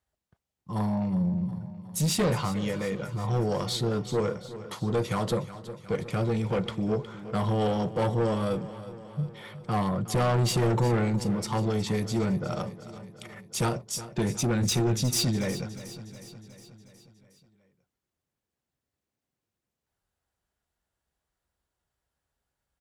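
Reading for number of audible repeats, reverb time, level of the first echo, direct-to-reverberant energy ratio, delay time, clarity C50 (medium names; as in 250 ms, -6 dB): 5, no reverb, -14.5 dB, no reverb, 363 ms, no reverb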